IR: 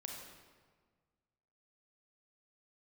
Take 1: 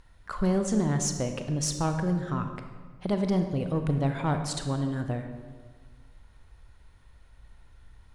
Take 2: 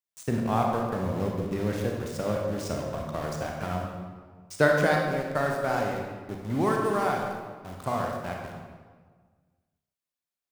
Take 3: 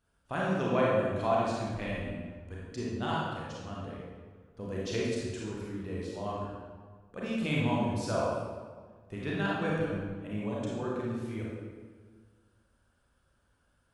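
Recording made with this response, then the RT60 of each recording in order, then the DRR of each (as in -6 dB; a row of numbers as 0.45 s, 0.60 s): 2; 1.6 s, 1.6 s, 1.6 s; 6.0 dB, 0.0 dB, -6.0 dB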